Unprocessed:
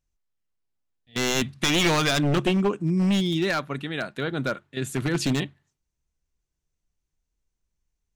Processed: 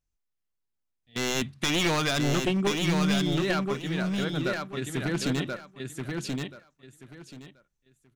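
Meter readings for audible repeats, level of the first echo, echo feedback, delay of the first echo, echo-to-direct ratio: 3, -4.0 dB, 21%, 1031 ms, -4.0 dB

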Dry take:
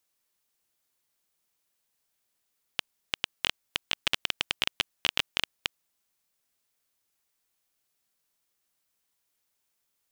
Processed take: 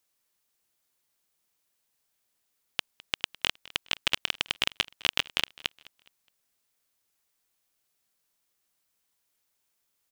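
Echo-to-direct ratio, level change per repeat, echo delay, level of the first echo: -21.5 dB, -9.0 dB, 208 ms, -22.0 dB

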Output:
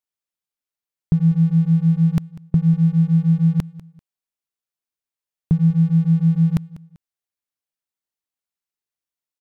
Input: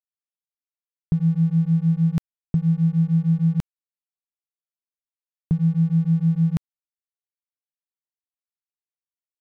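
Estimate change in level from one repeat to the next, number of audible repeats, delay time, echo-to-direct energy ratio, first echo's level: -10.5 dB, 2, 195 ms, -18.5 dB, -19.0 dB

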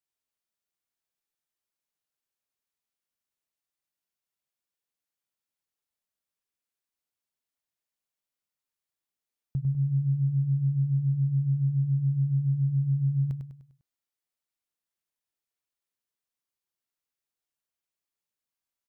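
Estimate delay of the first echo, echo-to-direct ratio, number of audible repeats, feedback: 100 ms, -5.5 dB, 4, 43%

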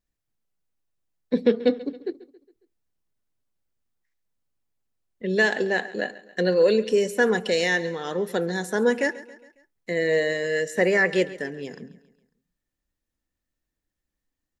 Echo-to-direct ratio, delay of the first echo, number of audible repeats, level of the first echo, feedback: -17.0 dB, 137 ms, 3, -18.0 dB, 50%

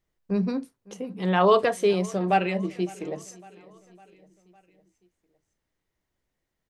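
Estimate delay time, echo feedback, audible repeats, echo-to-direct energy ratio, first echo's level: 556 ms, 56%, 3, -21.5 dB, -23.0 dB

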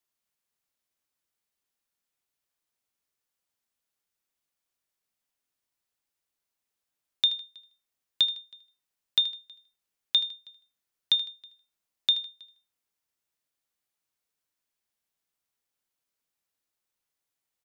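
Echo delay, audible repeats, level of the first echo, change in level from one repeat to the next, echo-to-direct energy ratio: 78 ms, 2, -15.0 dB, -8.0 dB, -14.5 dB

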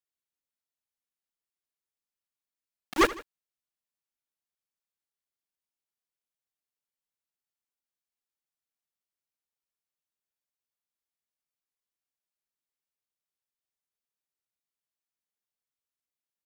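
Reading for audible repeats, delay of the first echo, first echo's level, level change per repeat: 2, 78 ms, -17.5 dB, -5.0 dB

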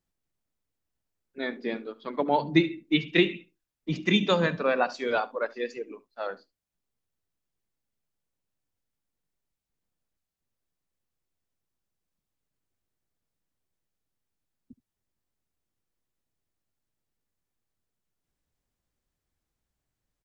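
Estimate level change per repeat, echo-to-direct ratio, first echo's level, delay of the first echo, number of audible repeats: no regular repeats, -20.5 dB, -20.5 dB, 71 ms, 1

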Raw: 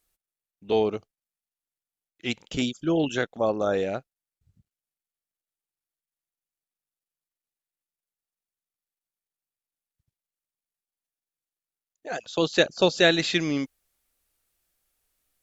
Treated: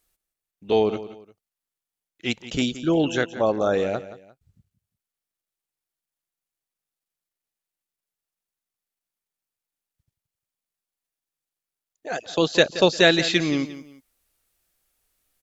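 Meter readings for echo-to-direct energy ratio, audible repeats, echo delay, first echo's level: -14.0 dB, 2, 175 ms, -14.5 dB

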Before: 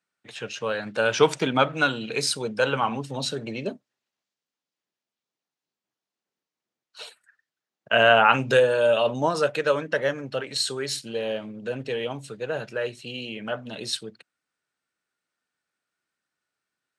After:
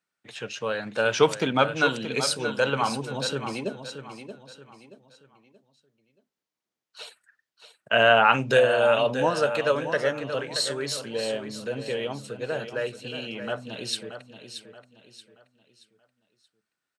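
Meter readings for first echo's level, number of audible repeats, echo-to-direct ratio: -10.0 dB, 3, -9.5 dB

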